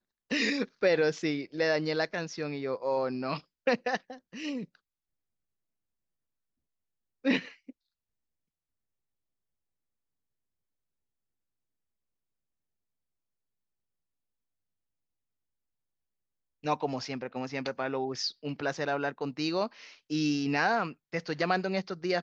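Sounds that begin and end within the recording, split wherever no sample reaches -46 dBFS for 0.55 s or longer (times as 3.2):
7.24–7.71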